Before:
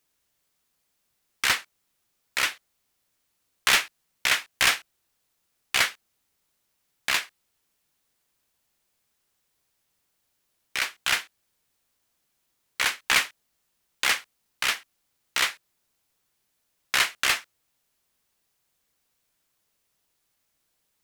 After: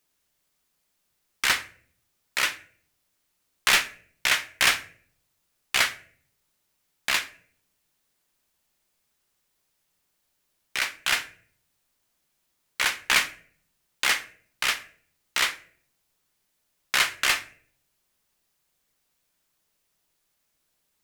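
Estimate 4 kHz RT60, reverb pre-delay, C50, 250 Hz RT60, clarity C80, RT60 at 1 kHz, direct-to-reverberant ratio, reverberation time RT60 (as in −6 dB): 0.35 s, 3 ms, 16.5 dB, 0.85 s, 20.0 dB, 0.45 s, 10.5 dB, 0.55 s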